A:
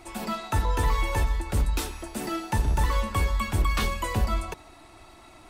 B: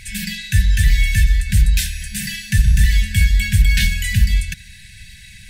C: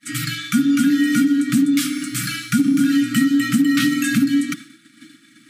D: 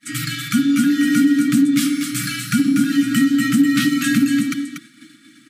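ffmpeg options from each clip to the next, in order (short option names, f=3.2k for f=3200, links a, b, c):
-filter_complex "[0:a]asplit=2[a][b];[b]alimiter=limit=-22.5dB:level=0:latency=1:release=386,volume=-1dB[c];[a][c]amix=inputs=2:normalize=0,afftfilt=real='re*(1-between(b*sr/4096,210,1500))':imag='im*(1-between(b*sr/4096,210,1500))':win_size=4096:overlap=0.75,volume=8.5dB"
-af "agate=range=-33dB:threshold=-31dB:ratio=3:detection=peak,afreqshift=-330,acompressor=threshold=-14dB:ratio=6,volume=1dB"
-af "aecho=1:1:239:0.447"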